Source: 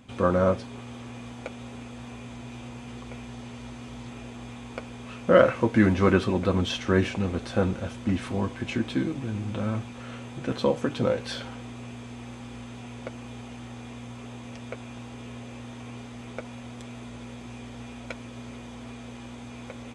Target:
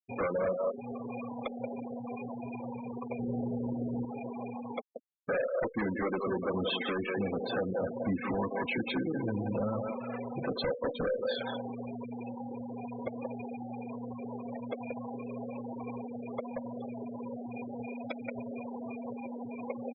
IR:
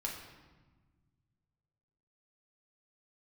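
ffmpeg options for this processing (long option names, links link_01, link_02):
-filter_complex "[0:a]highpass=230,equalizer=frequency=230:width_type=q:width=4:gain=-6,equalizer=frequency=330:width_type=q:width=4:gain=-6,equalizer=frequency=1400:width_type=q:width=4:gain=-5,equalizer=frequency=3000:width_type=q:width=4:gain=-5,lowpass=frequency=4400:width=0.5412,lowpass=frequency=4400:width=1.3066,asplit=2[link_01][link_02];[link_02]adelay=180,highpass=300,lowpass=3400,asoftclip=type=hard:threshold=-14.5dB,volume=-7dB[link_03];[link_01][link_03]amix=inputs=2:normalize=0,acompressor=threshold=-35dB:ratio=5,asettb=1/sr,asplit=3[link_04][link_05][link_06];[link_04]atrim=end=4.814[link_07];[link_05]atrim=start=4.81:end=6.12,asetpts=PTS-STARTPTS,afade=type=in:duration=0.004:curve=qsin,afade=type=out:start_time=1.306:duration=0.004:curve=qsin,agate=range=-33dB:threshold=-36dB:ratio=3:detection=peak[link_08];[link_06]atrim=start=6.116[link_09];[link_07][link_08]acrossfade=duration=0.004:curve1=hsin:curve2=qsin[link_10];[link_10][link_09]acrossfade=duration=0.004:curve1=qsin:curve2=hsin,aeval=exprs='0.0224*(abs(mod(val(0)/0.0224+3,4)-2)-1)':channel_layout=same,asettb=1/sr,asplit=3[link_11][link_12][link_13];[link_11]atrim=end=3.194[link_14];[link_12]atrim=start=3.19:end=4.05,asetpts=PTS-STARTPTS,afade=type=in:duration=0.004:curve=qsin,afade=type=out:start_time=0.856:duration=0.004:curve=qsin,tiltshelf=frequency=720:gain=8[link_15];[link_13]atrim=start=4.046[link_16];[link_14][link_15]acrossfade=duration=0.004:curve1=hsin:curve2=qsin[link_17];[link_17][link_16]acrossfade=duration=0.004:curve1=qsin:curve2=hsin,asplit=2[link_18][link_19];[1:a]atrim=start_sample=2205[link_20];[link_19][link_20]afir=irnorm=-1:irlink=0,volume=-20.5dB[link_21];[link_18][link_21]amix=inputs=2:normalize=0,afftfilt=real='re*gte(hypot(re,im),0.0158)':imag='im*gte(hypot(re,im),0.0158)':win_size=1024:overlap=0.75,volume=8dB" -ar 48000 -c:a libopus -b:a 128k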